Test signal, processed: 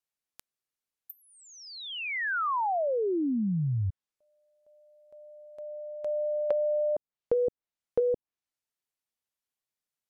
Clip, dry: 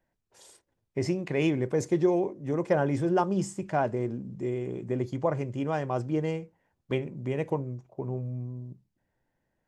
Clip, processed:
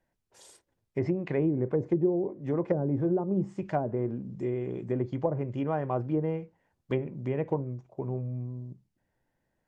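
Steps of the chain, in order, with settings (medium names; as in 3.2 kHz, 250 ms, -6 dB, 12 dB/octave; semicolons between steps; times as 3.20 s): low-pass that closes with the level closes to 410 Hz, closed at -21 dBFS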